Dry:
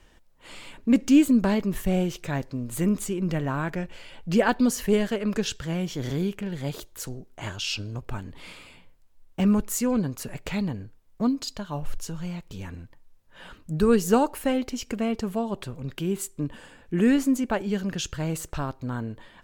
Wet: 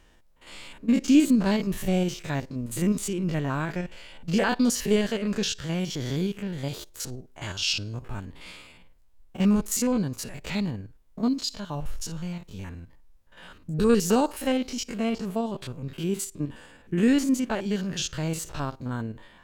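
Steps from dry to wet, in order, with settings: stepped spectrum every 50 ms; dynamic EQ 4700 Hz, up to +7 dB, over -50 dBFS, Q 0.7

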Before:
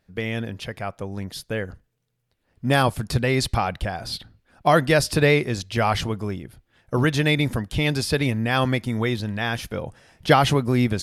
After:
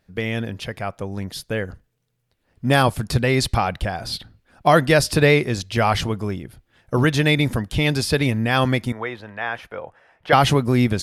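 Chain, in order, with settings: 8.92–10.33 three-band isolator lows -17 dB, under 480 Hz, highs -20 dB, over 2400 Hz; gain +2.5 dB

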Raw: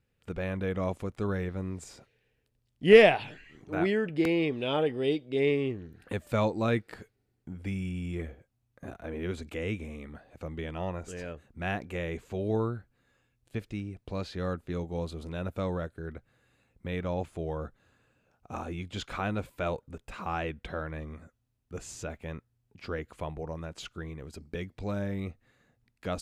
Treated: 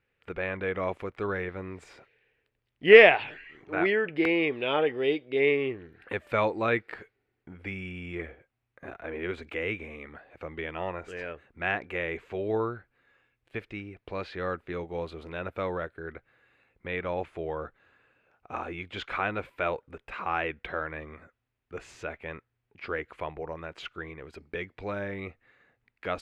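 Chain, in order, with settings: EQ curve 220 Hz 0 dB, 380 Hz +9 dB, 620 Hz +8 dB, 2200 Hz +15 dB, 7000 Hz -6 dB; gain -6.5 dB

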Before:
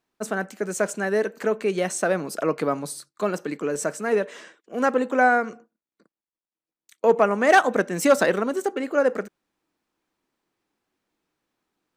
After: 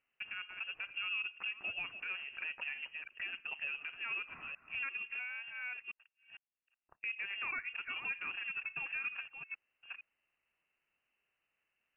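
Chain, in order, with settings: reverse delay 0.455 s, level -13.5 dB; 0.9–1.51 bell 260 Hz +13 dB 1.7 oct; compressor 3:1, threshold -35 dBFS, peak gain reduction 17.5 dB; limiter -25.5 dBFS, peak gain reduction 6.5 dB; 4.9–5.48 bell 1400 Hz -5 dB 2.1 oct; inverted band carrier 3000 Hz; gain -5 dB

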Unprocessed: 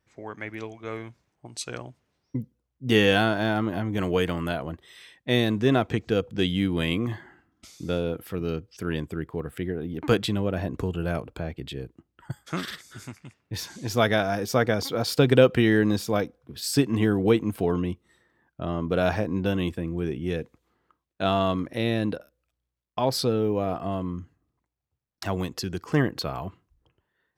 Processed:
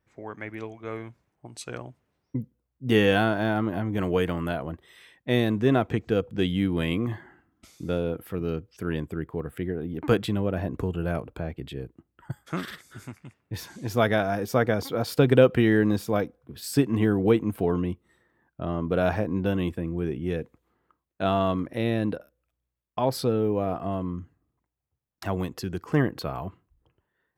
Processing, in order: bell 5200 Hz -7.5 dB 1.8 oct

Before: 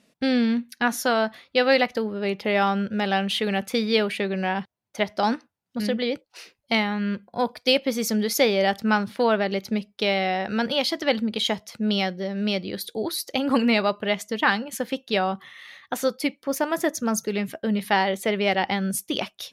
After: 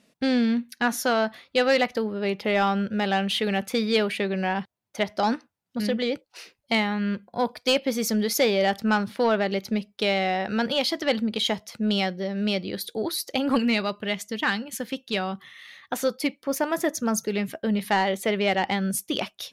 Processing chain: 13.58–15.78 bell 720 Hz -6.5 dB 2 oct; soft clip -12 dBFS, distortion -21 dB

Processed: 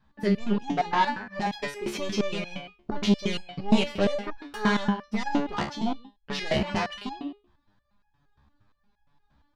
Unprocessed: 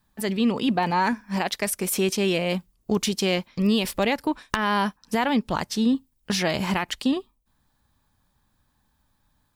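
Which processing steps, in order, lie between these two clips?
air absorption 210 m; echo 0.136 s -16.5 dB; sine folder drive 11 dB, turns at -7.5 dBFS; stepped resonator 8.6 Hz 71–830 Hz; gain -1.5 dB

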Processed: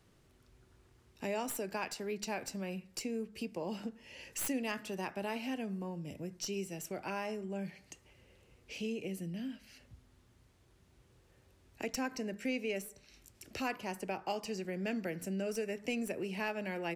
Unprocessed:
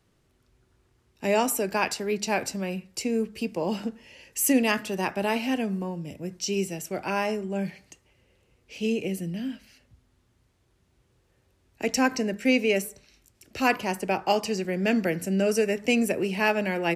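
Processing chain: tracing distortion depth 0.024 ms; compressor 2:1, threshold -47 dBFS, peak gain reduction 16.5 dB; gain +1 dB

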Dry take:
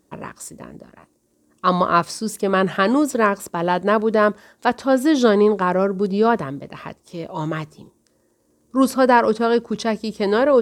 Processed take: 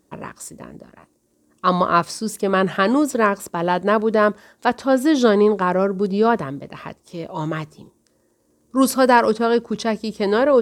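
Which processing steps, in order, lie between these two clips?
8.77–9.32 high shelf 4200 Hz +8 dB

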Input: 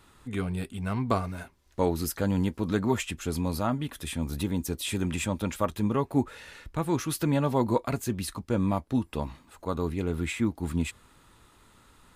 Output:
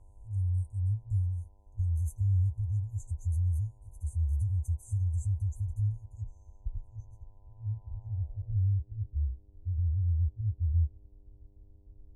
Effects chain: FFT band-reject 110–6000 Hz; tilt -4 dB/oct; notch comb 170 Hz; buzz 100 Hz, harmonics 10, -65 dBFS -1 dB/oct; low-pass sweep 9900 Hz -> 340 Hz, 5.88–8.86; gain -7 dB

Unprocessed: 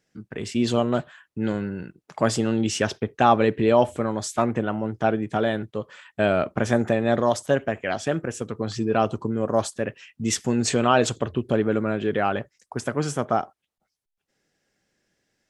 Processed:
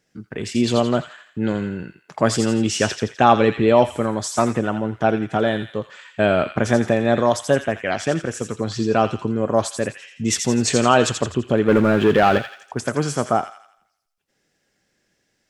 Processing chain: 11.68–12.38 sample leveller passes 2; on a send: thin delay 84 ms, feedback 45%, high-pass 1900 Hz, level -5 dB; on the sum: gain +3.5 dB

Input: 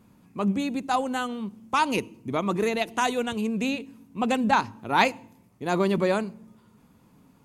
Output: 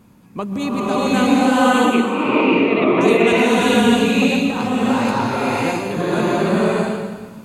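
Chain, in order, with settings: negative-ratio compressor -28 dBFS, ratio -1; 1.22–3.01 speaker cabinet 210–3100 Hz, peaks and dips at 320 Hz +8 dB, 500 Hz +3 dB, 1600 Hz -4 dB, 2400 Hz +7 dB; bloom reverb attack 0.64 s, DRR -9.5 dB; gain +4 dB

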